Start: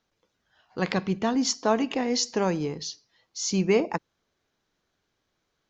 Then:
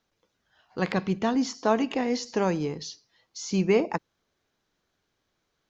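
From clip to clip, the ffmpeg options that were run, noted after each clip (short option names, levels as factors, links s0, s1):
-filter_complex "[0:a]acrossover=split=2500[s0][s1];[s1]acompressor=threshold=0.02:ratio=4:attack=1:release=60[s2];[s0][s2]amix=inputs=2:normalize=0"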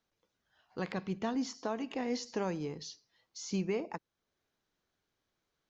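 -af "alimiter=limit=0.141:level=0:latency=1:release=442,volume=0.447"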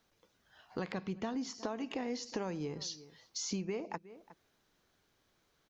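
-filter_complex "[0:a]asplit=2[s0][s1];[s1]adelay=361.5,volume=0.0501,highshelf=f=4000:g=-8.13[s2];[s0][s2]amix=inputs=2:normalize=0,acompressor=threshold=0.00501:ratio=4,volume=2.82"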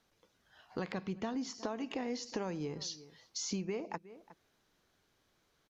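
-af "aresample=32000,aresample=44100"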